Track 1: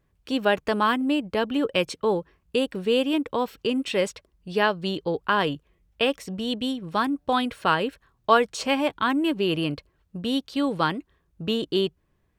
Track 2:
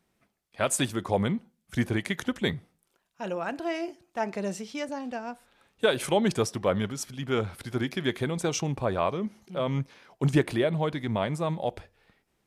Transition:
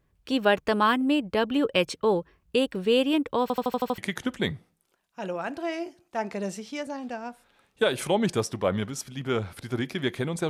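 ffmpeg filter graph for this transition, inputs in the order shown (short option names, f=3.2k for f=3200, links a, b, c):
-filter_complex "[0:a]apad=whole_dur=10.49,atrim=end=10.49,asplit=7[a][b][c][d][e][f][g];[a]atrim=end=3.502[h];[b]atrim=start=3.418:end=3.502[i];[c]atrim=start=3.418:end=3.502[j];[d]atrim=start=3.418:end=3.502[k];[e]atrim=start=3.418:end=3.502[l];[f]atrim=start=3.418:end=3.502[m];[g]atrim=start=3.418:end=3.502[n];[1:a]atrim=start=1.998:end=8.51[o];[h][i]acrossfade=d=0.004:c1=hsin:c2=hsin[p];[p][j]acrossfade=d=0.004:c1=hsin:c2=hsin[q];[q][k]acrossfade=d=0.004:c1=hsin:c2=hsin[r];[r][l]acrossfade=d=0.004:c1=hsin:c2=hsin[s];[s][m]acrossfade=d=0.004:c1=hsin:c2=hsin[t];[t][n]acrossfade=d=0.004:c1=hsin:c2=hsin[u];[u][o]acrossfade=d=0.004:c1=hsin:c2=hsin"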